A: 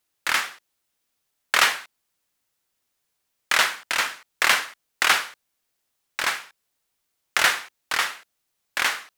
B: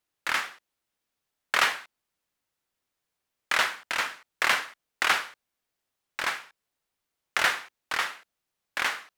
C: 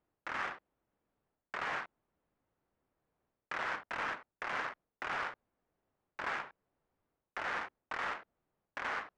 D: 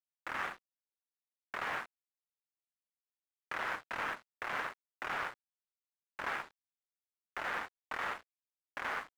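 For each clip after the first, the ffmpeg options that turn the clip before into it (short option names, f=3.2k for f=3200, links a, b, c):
-af "highshelf=f=3.9k:g=-7,volume=-3dB"
-af "areverse,acompressor=threshold=-32dB:ratio=12,areverse,alimiter=level_in=9dB:limit=-24dB:level=0:latency=1:release=15,volume=-9dB,adynamicsmooth=sensitivity=3.5:basefreq=1k,volume=10dB"
-af "aeval=exprs='sgn(val(0))*max(abs(val(0))-0.00237,0)':c=same,volume=1dB"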